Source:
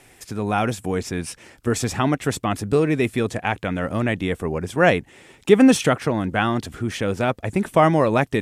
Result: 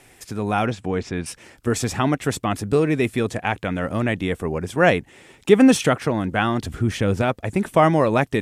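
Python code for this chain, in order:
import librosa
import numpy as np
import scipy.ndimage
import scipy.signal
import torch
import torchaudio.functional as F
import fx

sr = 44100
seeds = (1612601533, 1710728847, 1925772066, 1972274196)

y = fx.lowpass(x, sr, hz=4500.0, slope=12, at=(0.66, 1.26))
y = fx.low_shelf(y, sr, hz=180.0, db=9.0, at=(6.62, 7.22))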